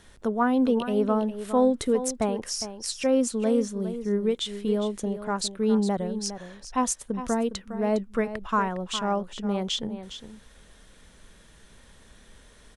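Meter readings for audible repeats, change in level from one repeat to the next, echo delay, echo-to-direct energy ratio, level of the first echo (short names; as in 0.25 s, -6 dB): 1, no steady repeat, 0.409 s, -11.5 dB, -11.5 dB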